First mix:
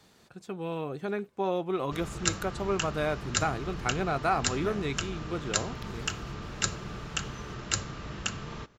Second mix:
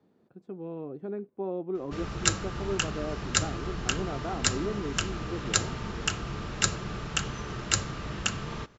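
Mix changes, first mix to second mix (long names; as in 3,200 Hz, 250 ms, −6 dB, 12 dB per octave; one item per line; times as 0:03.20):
speech: add resonant band-pass 290 Hz, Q 1.2
background +3.5 dB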